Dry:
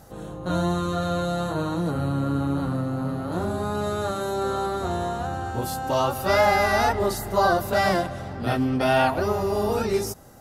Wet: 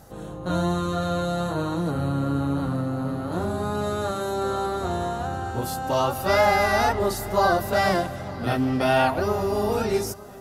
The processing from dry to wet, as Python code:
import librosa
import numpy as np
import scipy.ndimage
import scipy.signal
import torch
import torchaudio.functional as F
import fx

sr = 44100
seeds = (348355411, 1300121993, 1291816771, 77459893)

y = fx.echo_feedback(x, sr, ms=911, feedback_pct=48, wet_db=-20.0)